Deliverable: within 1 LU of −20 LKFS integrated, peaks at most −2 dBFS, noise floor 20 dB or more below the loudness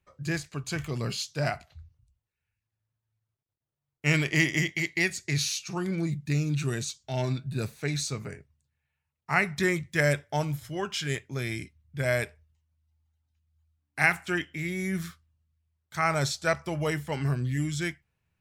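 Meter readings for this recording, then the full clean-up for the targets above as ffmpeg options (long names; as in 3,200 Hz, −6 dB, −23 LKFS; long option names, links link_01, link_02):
integrated loudness −29.0 LKFS; sample peak −8.0 dBFS; target loudness −20.0 LKFS
→ -af "volume=9dB,alimiter=limit=-2dB:level=0:latency=1"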